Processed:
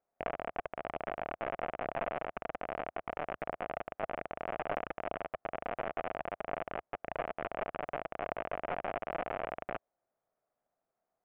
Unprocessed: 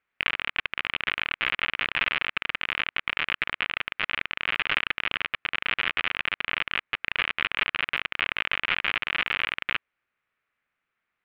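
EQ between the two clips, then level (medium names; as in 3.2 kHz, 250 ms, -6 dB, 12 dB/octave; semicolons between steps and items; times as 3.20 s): resonant low-pass 680 Hz, resonance Q 4.9; peaking EQ 72 Hz -7.5 dB 0.7 oct; -2.0 dB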